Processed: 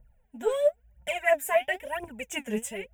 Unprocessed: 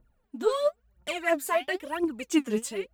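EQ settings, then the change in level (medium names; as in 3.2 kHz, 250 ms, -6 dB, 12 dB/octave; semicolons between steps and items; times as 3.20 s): bass shelf 190 Hz +4.5 dB; static phaser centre 1.2 kHz, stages 6; +3.0 dB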